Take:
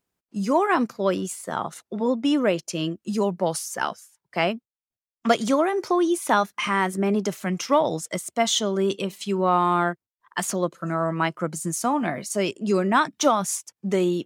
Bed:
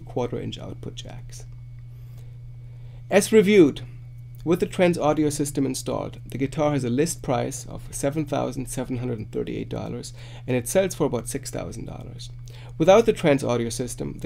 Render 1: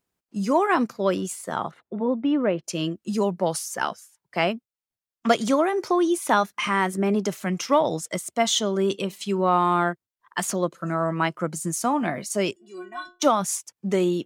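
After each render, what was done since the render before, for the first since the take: 1.71–2.64 s: distance through air 500 m; 12.56–13.22 s: inharmonic resonator 350 Hz, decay 0.31 s, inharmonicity 0.008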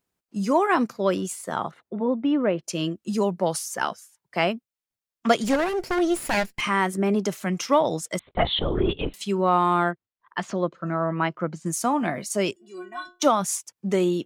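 5.44–6.61 s: comb filter that takes the minimum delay 0.4 ms; 8.19–9.14 s: LPC vocoder at 8 kHz whisper; 9.91–11.66 s: distance through air 190 m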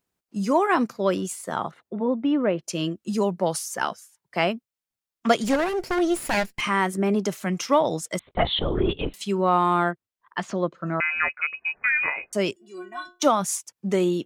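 11.00–12.33 s: frequency inversion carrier 2.7 kHz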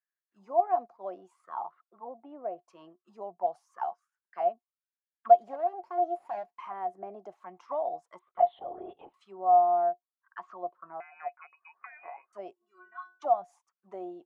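auto-wah 710–1700 Hz, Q 12, down, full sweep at -20.5 dBFS; small resonant body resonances 360/710/1100 Hz, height 8 dB, ringing for 90 ms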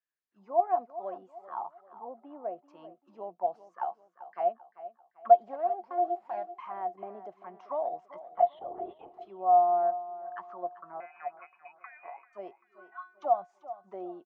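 distance through air 140 m; feedback delay 391 ms, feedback 40%, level -15 dB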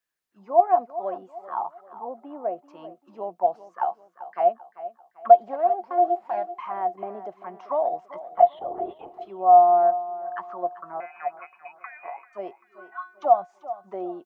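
trim +8 dB; peak limiter -3 dBFS, peak gain reduction 3 dB

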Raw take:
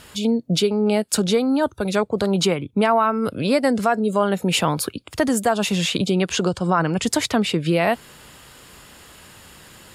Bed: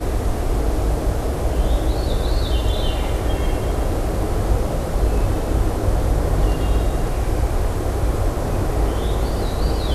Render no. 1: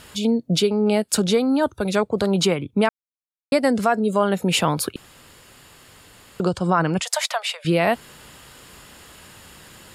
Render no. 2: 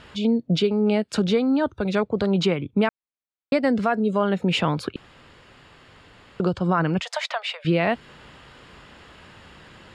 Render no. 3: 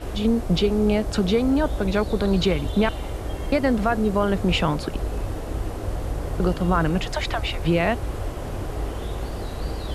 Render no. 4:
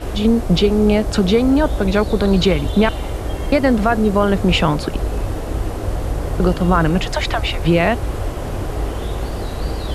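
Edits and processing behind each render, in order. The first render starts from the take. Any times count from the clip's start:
2.89–3.52 s: mute; 4.96–6.40 s: room tone; 7.00–7.65 s: steep high-pass 560 Hz 72 dB/octave
dynamic bell 810 Hz, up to -4 dB, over -28 dBFS, Q 0.72; low-pass 3.3 kHz 12 dB/octave
add bed -9 dB
trim +6 dB; peak limiter -2 dBFS, peak gain reduction 1.5 dB

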